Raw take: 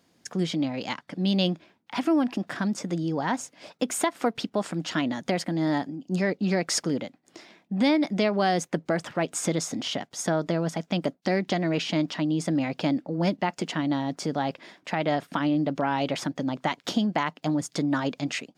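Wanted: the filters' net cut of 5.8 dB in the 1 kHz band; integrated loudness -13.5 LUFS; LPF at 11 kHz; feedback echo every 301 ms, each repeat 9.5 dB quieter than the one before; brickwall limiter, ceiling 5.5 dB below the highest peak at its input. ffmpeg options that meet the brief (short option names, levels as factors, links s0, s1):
-af "lowpass=11000,equalizer=f=1000:t=o:g=-8.5,alimiter=limit=0.119:level=0:latency=1,aecho=1:1:301|602|903|1204:0.335|0.111|0.0365|0.012,volume=5.96"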